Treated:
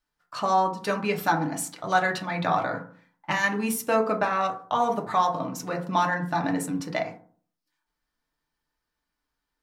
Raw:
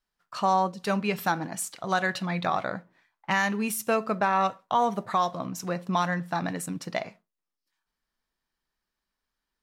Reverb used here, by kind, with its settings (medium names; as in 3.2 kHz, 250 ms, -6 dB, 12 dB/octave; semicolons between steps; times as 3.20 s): FDN reverb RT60 0.47 s, low-frequency decay 1.2×, high-frequency decay 0.3×, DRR 1.5 dB